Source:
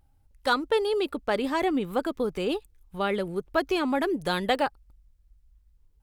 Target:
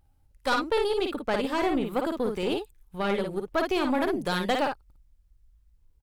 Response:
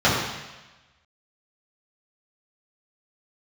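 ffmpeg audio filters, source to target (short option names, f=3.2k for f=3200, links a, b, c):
-af "aecho=1:1:46|55:0.126|0.562,aeval=exprs='(tanh(7.94*val(0)+0.5)-tanh(0.5))/7.94':c=same,volume=1dB"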